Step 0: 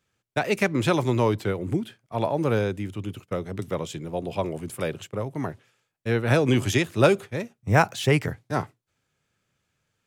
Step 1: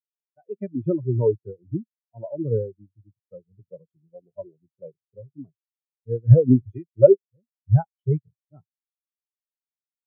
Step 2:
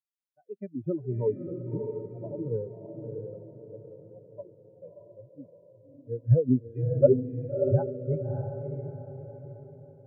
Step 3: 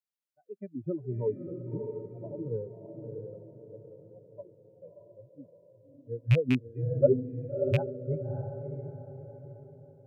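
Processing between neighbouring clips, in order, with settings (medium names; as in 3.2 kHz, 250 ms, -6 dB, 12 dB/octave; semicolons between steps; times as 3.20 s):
level rider gain up to 9 dB; spectral contrast expander 4:1
high-pass 99 Hz; on a send: echo that smears into a reverb 625 ms, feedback 43%, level -5 dB; on the sum: trim -7 dB
rattle on loud lows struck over -19 dBFS, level -18 dBFS; trim -3 dB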